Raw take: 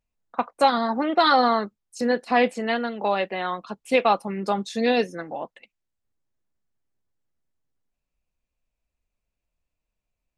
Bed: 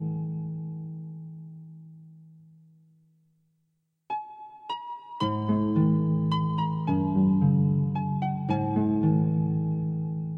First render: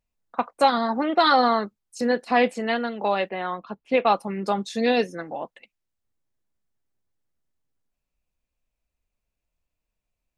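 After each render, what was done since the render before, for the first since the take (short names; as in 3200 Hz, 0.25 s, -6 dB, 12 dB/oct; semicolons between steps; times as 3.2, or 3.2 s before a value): 3.29–4.07 air absorption 260 m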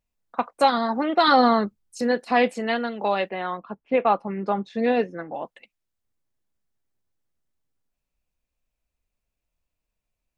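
1.28–1.99 low shelf 280 Hz +10 dB; 3.57–5.34 LPF 2100 Hz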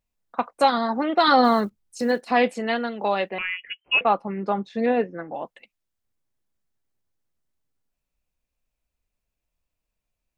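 1.44–2.32 block floating point 7-bit; 3.38–4.01 inverted band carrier 3100 Hz; 4.86–5.28 LPF 2500 Hz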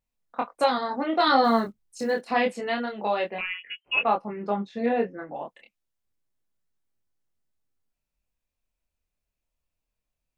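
chorus 0.27 Hz, depth 4.2 ms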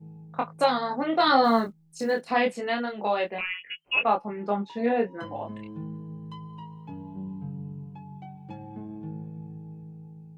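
add bed -14.5 dB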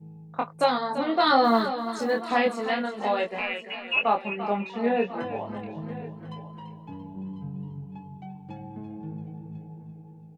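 echo 1.046 s -16.5 dB; warbling echo 0.34 s, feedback 42%, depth 51 cents, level -11 dB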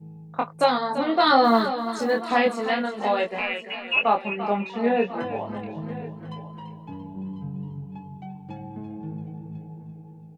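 gain +2.5 dB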